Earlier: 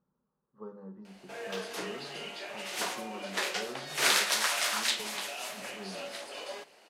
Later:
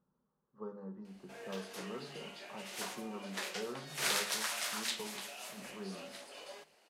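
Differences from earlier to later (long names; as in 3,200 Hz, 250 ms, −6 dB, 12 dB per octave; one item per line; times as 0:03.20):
background −9.0 dB
master: add high-shelf EQ 7,100 Hz +4.5 dB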